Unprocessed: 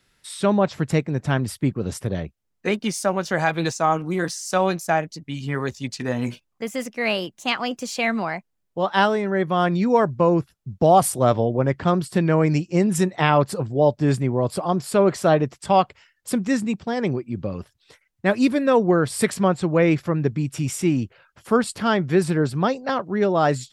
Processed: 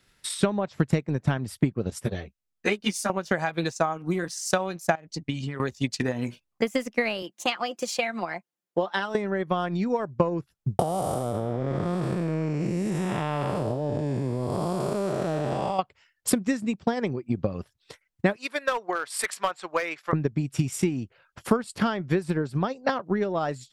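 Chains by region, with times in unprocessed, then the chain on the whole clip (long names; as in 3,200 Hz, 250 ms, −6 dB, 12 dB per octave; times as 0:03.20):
0:01.90–0:03.10: tilt shelving filter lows −3 dB, about 1,400 Hz + string-ensemble chorus
0:04.95–0:05.60: phase distortion by the signal itself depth 0.067 ms + low-pass filter 9,600 Hz 24 dB per octave + downward compressor 10 to 1, threshold −28 dBFS
0:07.22–0:09.15: high-pass filter 240 Hz + downward compressor 1.5 to 1, threshold −33 dBFS + comb filter 5.7 ms, depth 46%
0:10.79–0:15.79: spectrum smeared in time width 392 ms + envelope flattener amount 100%
0:18.36–0:20.13: high-pass filter 1,000 Hz + high-shelf EQ 4,000 Hz −4.5 dB + hard clipping −21 dBFS
whole clip: downward compressor 4 to 1, threshold −26 dBFS; transient designer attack +8 dB, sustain −6 dB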